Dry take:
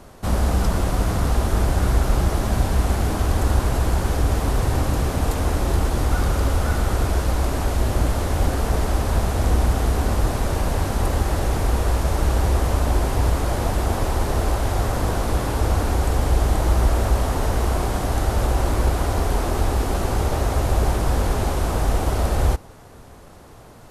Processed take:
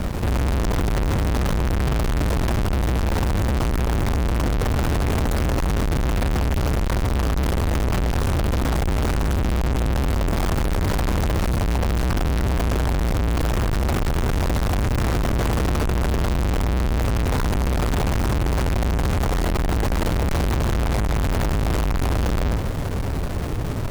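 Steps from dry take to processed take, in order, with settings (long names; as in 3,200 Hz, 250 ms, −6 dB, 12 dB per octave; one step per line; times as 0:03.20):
each half-wave held at its own peak
low-shelf EQ 300 Hz +11.5 dB
fuzz pedal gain 32 dB, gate −36 dBFS
level −6 dB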